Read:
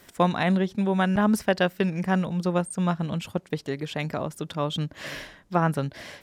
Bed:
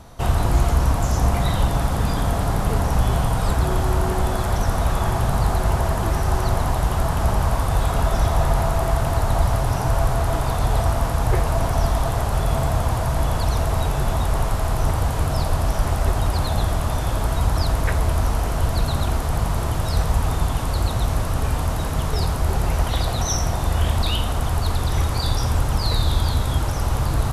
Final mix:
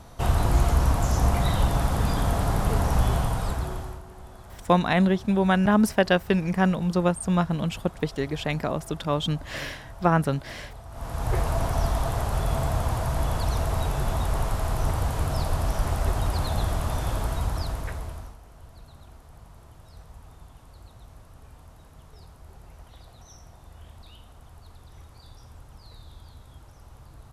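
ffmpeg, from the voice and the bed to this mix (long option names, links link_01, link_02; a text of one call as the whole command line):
ffmpeg -i stem1.wav -i stem2.wav -filter_complex "[0:a]adelay=4500,volume=2dB[link_01];[1:a]volume=15.5dB,afade=type=out:start_time=3.04:duration=0.98:silence=0.0944061,afade=type=in:start_time=10.9:duration=0.5:silence=0.11885,afade=type=out:start_time=17.11:duration=1.26:silence=0.0794328[link_02];[link_01][link_02]amix=inputs=2:normalize=0" out.wav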